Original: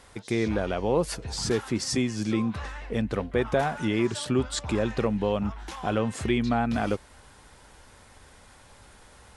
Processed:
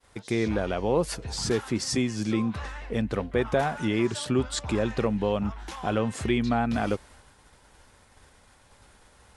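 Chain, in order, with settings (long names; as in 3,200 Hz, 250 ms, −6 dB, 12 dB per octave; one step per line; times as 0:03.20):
downward expander −47 dBFS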